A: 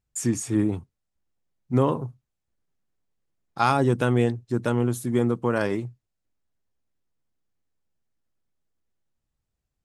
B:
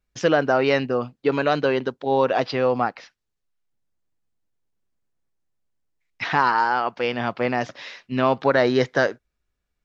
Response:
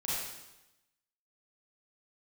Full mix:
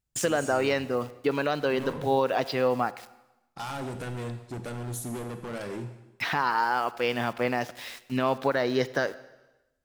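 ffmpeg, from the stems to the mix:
-filter_complex "[0:a]alimiter=limit=-13.5dB:level=0:latency=1:release=238,volume=29dB,asoftclip=hard,volume=-29dB,volume=-5dB,asplit=2[link_01][link_02];[link_02]volume=-11dB[link_03];[1:a]aeval=exprs='val(0)*gte(abs(val(0)),0.00891)':channel_layout=same,volume=-3.5dB,asplit=3[link_04][link_05][link_06];[link_05]volume=-21dB[link_07];[link_06]apad=whole_len=434080[link_08];[link_01][link_08]sidechaincompress=threshold=-27dB:ratio=8:attack=16:release=106[link_09];[2:a]atrim=start_sample=2205[link_10];[link_03][link_07]amix=inputs=2:normalize=0[link_11];[link_11][link_10]afir=irnorm=-1:irlink=0[link_12];[link_09][link_04][link_12]amix=inputs=3:normalize=0,highshelf=frequency=4800:gain=5.5,alimiter=limit=-13.5dB:level=0:latency=1:release=443"

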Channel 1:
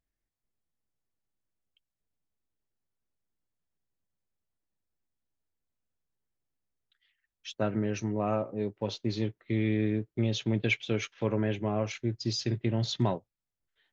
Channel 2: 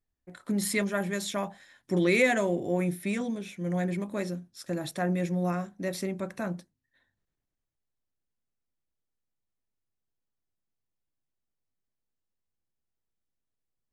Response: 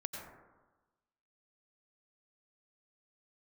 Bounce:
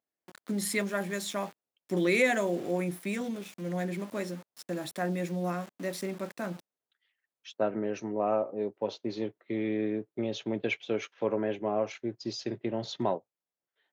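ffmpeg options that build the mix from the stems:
-filter_complex "[0:a]equalizer=frequency=630:width_type=o:width=2.4:gain=10,volume=-6.5dB[link_01];[1:a]aeval=exprs='val(0)*gte(abs(val(0)),0.00794)':channel_layout=same,volume=-1.5dB[link_02];[link_01][link_02]amix=inputs=2:normalize=0,highpass=180"

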